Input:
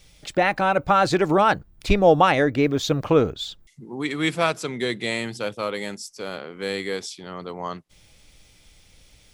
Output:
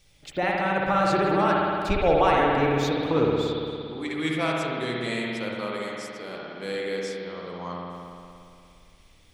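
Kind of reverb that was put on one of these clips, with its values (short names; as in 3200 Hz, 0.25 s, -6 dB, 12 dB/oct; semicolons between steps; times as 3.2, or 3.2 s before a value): spring tank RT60 2.5 s, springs 57 ms, chirp 25 ms, DRR -3 dB; gain -7.5 dB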